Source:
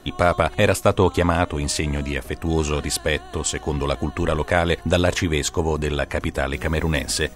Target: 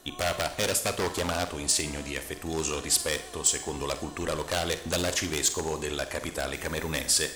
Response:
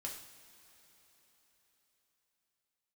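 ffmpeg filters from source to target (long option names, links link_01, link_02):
-filter_complex "[0:a]aeval=exprs='0.224*(abs(mod(val(0)/0.224+3,4)-2)-1)':channel_layout=same,bass=frequency=250:gain=-7,treble=frequency=4000:gain=10,asplit=2[link_01][link_02];[1:a]atrim=start_sample=2205,adelay=45[link_03];[link_02][link_03]afir=irnorm=-1:irlink=0,volume=-7.5dB[link_04];[link_01][link_04]amix=inputs=2:normalize=0,volume=-7.5dB"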